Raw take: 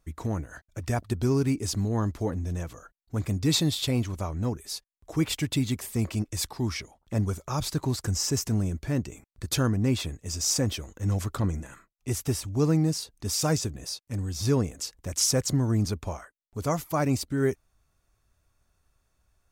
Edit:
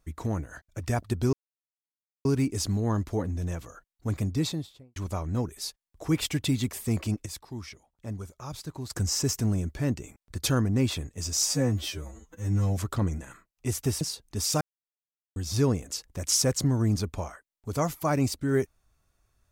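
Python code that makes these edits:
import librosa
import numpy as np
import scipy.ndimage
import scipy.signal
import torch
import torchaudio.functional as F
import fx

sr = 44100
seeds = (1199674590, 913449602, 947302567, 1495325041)

y = fx.studio_fade_out(x, sr, start_s=3.19, length_s=0.85)
y = fx.edit(y, sr, fx.insert_silence(at_s=1.33, length_s=0.92),
    fx.clip_gain(start_s=6.34, length_s=1.64, db=-9.5),
    fx.stretch_span(start_s=10.53, length_s=0.66, factor=2.0),
    fx.cut(start_s=12.43, length_s=0.47),
    fx.silence(start_s=13.5, length_s=0.75), tone=tone)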